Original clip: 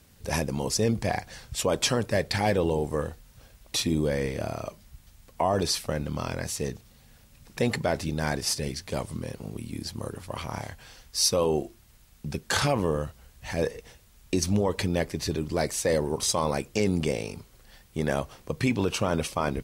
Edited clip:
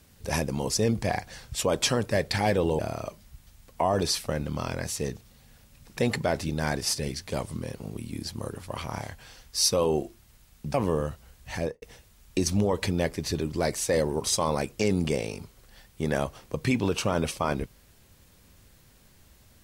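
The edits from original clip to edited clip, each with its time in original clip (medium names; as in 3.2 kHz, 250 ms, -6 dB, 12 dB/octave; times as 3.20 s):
2.79–4.39 s: delete
12.34–12.70 s: delete
13.52–13.78 s: studio fade out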